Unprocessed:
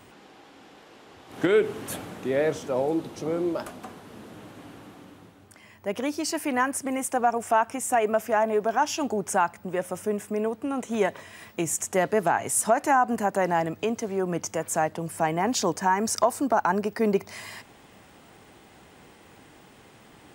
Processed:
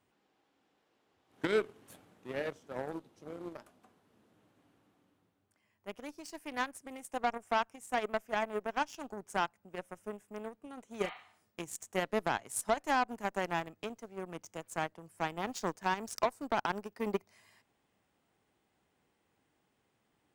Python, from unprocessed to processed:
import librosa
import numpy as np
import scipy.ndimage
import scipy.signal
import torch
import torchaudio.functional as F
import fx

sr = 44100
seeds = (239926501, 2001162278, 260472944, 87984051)

y = fx.cheby_harmonics(x, sr, harmonics=(2, 3, 7), levels_db=(-25, -34, -19), full_scale_db=-8.0)
y = fx.spec_repair(y, sr, seeds[0], start_s=11.07, length_s=0.43, low_hz=640.0, high_hz=4500.0, source='both')
y = F.gain(torch.from_numpy(y), -8.5).numpy()